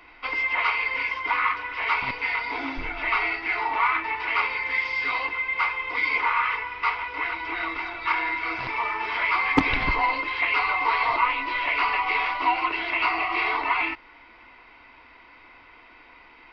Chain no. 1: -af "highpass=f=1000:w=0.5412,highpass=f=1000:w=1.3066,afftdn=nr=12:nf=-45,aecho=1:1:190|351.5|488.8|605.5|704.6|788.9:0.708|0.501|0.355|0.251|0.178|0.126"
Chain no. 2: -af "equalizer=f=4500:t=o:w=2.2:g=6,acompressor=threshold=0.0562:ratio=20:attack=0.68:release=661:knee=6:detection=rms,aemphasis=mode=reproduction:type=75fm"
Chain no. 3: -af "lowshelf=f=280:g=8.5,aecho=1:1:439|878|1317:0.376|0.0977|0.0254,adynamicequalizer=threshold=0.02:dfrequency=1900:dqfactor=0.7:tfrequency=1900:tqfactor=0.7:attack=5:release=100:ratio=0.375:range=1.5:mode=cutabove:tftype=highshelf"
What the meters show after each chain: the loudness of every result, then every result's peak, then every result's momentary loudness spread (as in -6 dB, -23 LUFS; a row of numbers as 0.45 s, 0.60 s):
-22.0 LUFS, -34.0 LUFS, -24.5 LUFS; -9.0 dBFS, -22.5 dBFS, -1.5 dBFS; 5 LU, 15 LU, 6 LU